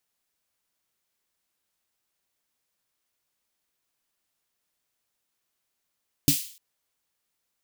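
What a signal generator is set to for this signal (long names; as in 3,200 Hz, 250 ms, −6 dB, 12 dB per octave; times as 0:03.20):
synth snare length 0.30 s, tones 150 Hz, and 280 Hz, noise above 2,800 Hz, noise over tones −3 dB, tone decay 0.12 s, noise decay 0.47 s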